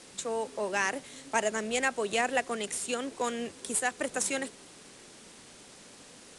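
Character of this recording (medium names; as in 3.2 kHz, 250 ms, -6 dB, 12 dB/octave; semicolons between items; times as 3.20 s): a quantiser's noise floor 8-bit, dither triangular; IMA ADPCM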